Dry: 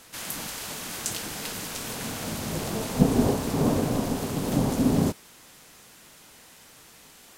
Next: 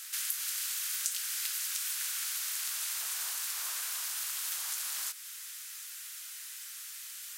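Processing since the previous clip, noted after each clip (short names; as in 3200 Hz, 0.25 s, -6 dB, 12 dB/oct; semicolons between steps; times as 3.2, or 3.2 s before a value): Chebyshev high-pass 1400 Hz, order 3; tilt +3 dB/oct; compressor 2.5:1, threshold -35 dBFS, peak gain reduction 12 dB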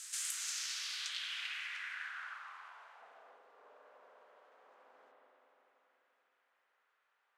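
spring tank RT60 4 s, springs 43/48 ms, chirp 60 ms, DRR -4 dB; low-pass sweep 7800 Hz -> 490 Hz, 0.32–3.43; gain -7 dB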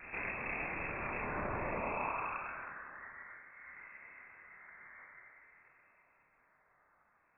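in parallel at -8 dB: decimation with a swept rate 21×, swing 100% 0.55 Hz; on the sum: chorus voices 4, 0.98 Hz, delay 28 ms, depth 3 ms; inverted band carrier 2600 Hz; gain +9.5 dB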